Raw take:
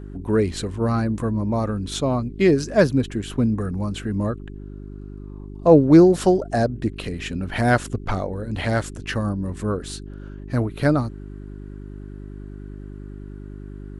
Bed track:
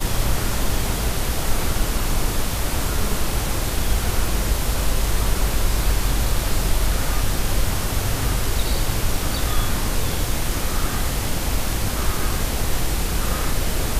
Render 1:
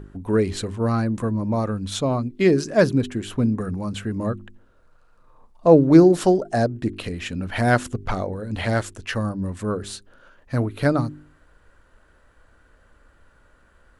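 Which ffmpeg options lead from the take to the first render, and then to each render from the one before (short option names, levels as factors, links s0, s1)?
-af "bandreject=f=50:t=h:w=4,bandreject=f=100:t=h:w=4,bandreject=f=150:t=h:w=4,bandreject=f=200:t=h:w=4,bandreject=f=250:t=h:w=4,bandreject=f=300:t=h:w=4,bandreject=f=350:t=h:w=4,bandreject=f=400:t=h:w=4"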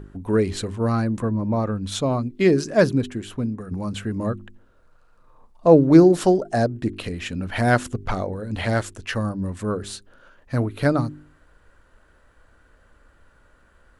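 -filter_complex "[0:a]asettb=1/sr,asplit=3[s0][s1][s2];[s0]atrim=end=1.204[s3];[s1]atrim=start=1.2:end=1.84,asetpts=PTS-STARTPTS,afade=t=in:d=0.004:c=qsin,afade=t=out:st=0.636:d=0.004:c=qsin,aemphasis=mode=reproduction:type=50fm[s4];[s2]atrim=start=1.836[s5];[s3][s4]acrossfade=d=0.004:c1=hsin:c2=qsin[s6];[s6][s5]acrossfade=d=0.004:c1=qsin:c2=hsin,asplit=2[s7][s8];[s7]atrim=end=3.71,asetpts=PTS-STARTPTS,afade=t=out:st=2.83:d=0.88:silence=0.354813[s9];[s8]atrim=start=3.71,asetpts=PTS-STARTPTS,afade=t=in:d=0.004:c=hsin:silence=0.354813[s10];[s9][s10]concat=n=2:v=0:a=1"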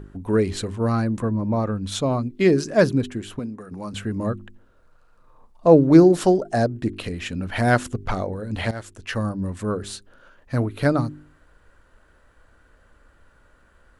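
-filter_complex "[0:a]asettb=1/sr,asplit=3[s0][s1][s2];[s0]atrim=end=3.394[s3];[s1]atrim=start=3.39:end=3.93,asetpts=PTS-STARTPTS,afade=t=in:d=0.004:c=qsin,afade=t=out:st=0.536:d=0.004:c=qsin,highpass=f=340:p=1[s4];[s2]atrim=start=3.926[s5];[s3][s4]acrossfade=d=0.004:c1=hsin:c2=qsin[s6];[s6][s5]acrossfade=d=0.004:c1=qsin:c2=hsin,asplit=2[s7][s8];[s7]atrim=end=8.71,asetpts=PTS-STARTPTS,afade=t=out:st=8.706:d=0.004:c=hsin:silence=0.16788[s9];[s8]atrim=start=8.71,asetpts=PTS-STARTPTS,afade=t=in:d=0.49:silence=0.16788[s10];[s9][s10]concat=n=2:v=0:a=1"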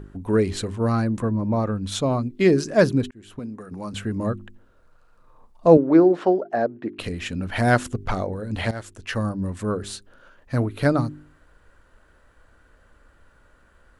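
-filter_complex "[0:a]asettb=1/sr,asplit=3[s0][s1][s2];[s0]atrim=end=5.774[s3];[s1]atrim=start=5.77:end=6.99,asetpts=PTS-STARTPTS,afade=t=in:d=0.004:c=qsin,afade=t=out:st=1.216:d=0.004:c=qsin,highpass=310,lowpass=2000[s4];[s2]atrim=start=6.986[s5];[s3][s4]acrossfade=d=0.004:c1=hsin:c2=qsin[s6];[s6][s5]acrossfade=d=0.004:c1=qsin:c2=hsin,asplit=2[s7][s8];[s7]atrim=end=3.11,asetpts=PTS-STARTPTS,afade=t=out:st=3.106:d=0.004:c=hsin[s9];[s8]atrim=start=3.11,asetpts=PTS-STARTPTS,afade=t=in:d=0.46[s10];[s9][s10]concat=n=2:v=0:a=1"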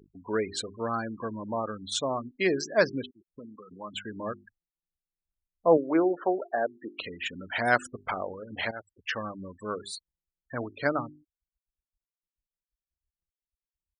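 -af "afftfilt=real='re*gte(hypot(re,im),0.0282)':imag='im*gte(hypot(re,im),0.0282)':win_size=1024:overlap=0.75,highpass=f=1000:p=1"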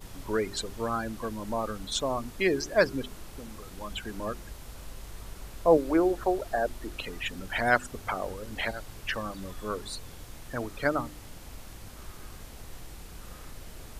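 -filter_complex "[1:a]volume=0.075[s0];[0:a][s0]amix=inputs=2:normalize=0"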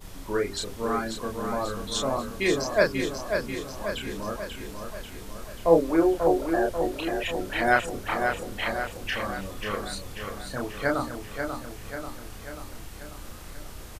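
-filter_complex "[0:a]asplit=2[s0][s1];[s1]adelay=30,volume=0.708[s2];[s0][s2]amix=inputs=2:normalize=0,asplit=2[s3][s4];[s4]aecho=0:1:539|1078|1617|2156|2695|3234|3773:0.501|0.286|0.163|0.0928|0.0529|0.0302|0.0172[s5];[s3][s5]amix=inputs=2:normalize=0"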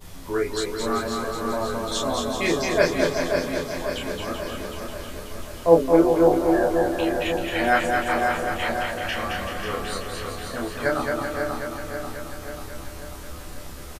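-filter_complex "[0:a]asplit=2[s0][s1];[s1]adelay=12,volume=0.631[s2];[s0][s2]amix=inputs=2:normalize=0,aecho=1:1:220|385|508.8|601.6|671.2:0.631|0.398|0.251|0.158|0.1"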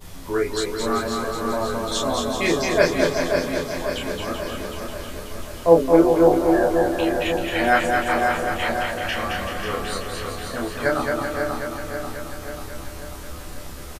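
-af "volume=1.26,alimiter=limit=0.891:level=0:latency=1"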